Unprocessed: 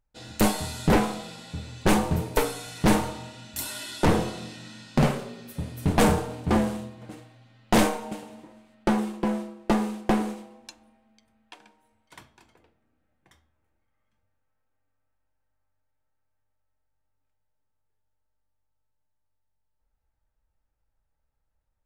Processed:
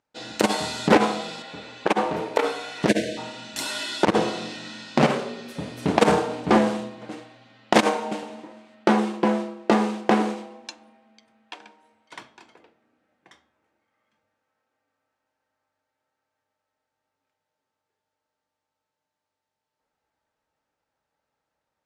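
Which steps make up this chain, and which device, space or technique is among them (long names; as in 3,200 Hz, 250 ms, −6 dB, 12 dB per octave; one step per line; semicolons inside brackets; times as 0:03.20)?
0:02.89–0:03.17: time-frequency box erased 730–1,500 Hz
public-address speaker with an overloaded transformer (saturating transformer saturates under 91 Hz; band-pass filter 250–6,100 Hz)
0:01.42–0:02.83: bass and treble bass −10 dB, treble −9 dB
level +8 dB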